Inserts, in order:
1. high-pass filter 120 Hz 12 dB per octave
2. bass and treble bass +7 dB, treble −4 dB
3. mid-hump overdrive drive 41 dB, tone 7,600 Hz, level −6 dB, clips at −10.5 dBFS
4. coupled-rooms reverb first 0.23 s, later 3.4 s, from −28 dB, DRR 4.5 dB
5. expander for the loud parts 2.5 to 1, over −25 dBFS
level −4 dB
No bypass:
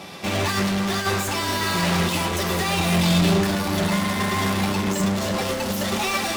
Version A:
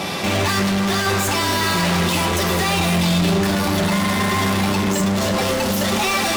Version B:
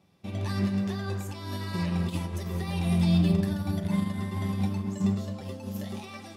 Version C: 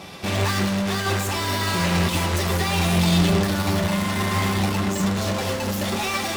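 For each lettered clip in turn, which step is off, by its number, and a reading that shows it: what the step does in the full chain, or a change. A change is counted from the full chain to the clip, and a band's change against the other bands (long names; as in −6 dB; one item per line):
5, change in momentary loudness spread −4 LU
3, change in crest factor +2.5 dB
1, 125 Hz band +3.0 dB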